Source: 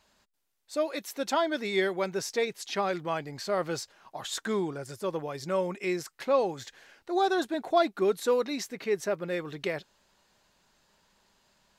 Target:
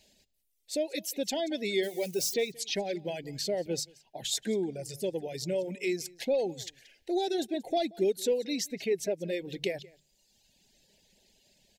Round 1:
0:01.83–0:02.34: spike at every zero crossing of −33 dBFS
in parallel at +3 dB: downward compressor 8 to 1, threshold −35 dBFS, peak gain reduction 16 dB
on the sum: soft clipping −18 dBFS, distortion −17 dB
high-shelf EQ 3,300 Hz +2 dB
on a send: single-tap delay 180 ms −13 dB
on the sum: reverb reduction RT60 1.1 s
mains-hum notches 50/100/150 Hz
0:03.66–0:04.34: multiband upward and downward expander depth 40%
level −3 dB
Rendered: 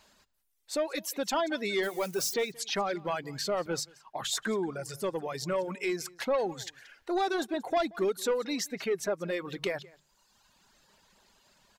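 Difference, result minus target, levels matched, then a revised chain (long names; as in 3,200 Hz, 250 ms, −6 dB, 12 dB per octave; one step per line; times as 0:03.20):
soft clipping: distortion +15 dB; 1,000 Hz band +6.5 dB
0:01.83–0:02.34: spike at every zero crossing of −33 dBFS
in parallel at +3 dB: downward compressor 8 to 1, threshold −35 dBFS, peak gain reduction 16 dB
on the sum: soft clipping −8.5 dBFS, distortion −32 dB
Butterworth band-reject 1,200 Hz, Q 0.77
high-shelf EQ 3,300 Hz +2 dB
on a send: single-tap delay 180 ms −13 dB
on the sum: reverb reduction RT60 1.1 s
mains-hum notches 50/100/150 Hz
0:03.66–0:04.34: multiband upward and downward expander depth 40%
level −3 dB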